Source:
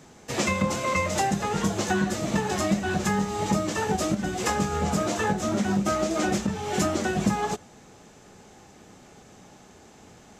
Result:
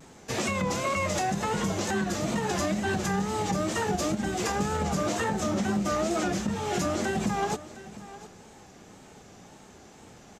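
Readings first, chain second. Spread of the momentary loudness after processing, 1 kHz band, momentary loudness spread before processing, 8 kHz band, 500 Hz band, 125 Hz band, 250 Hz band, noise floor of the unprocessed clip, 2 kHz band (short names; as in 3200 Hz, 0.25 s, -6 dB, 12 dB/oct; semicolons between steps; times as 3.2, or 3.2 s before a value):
5 LU, -2.0 dB, 2 LU, -2.0 dB, -2.0 dB, -2.5 dB, -3.0 dB, -52 dBFS, -2.5 dB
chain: wow and flutter 85 cents; limiter -19 dBFS, peak gain reduction 7 dB; echo 0.71 s -16.5 dB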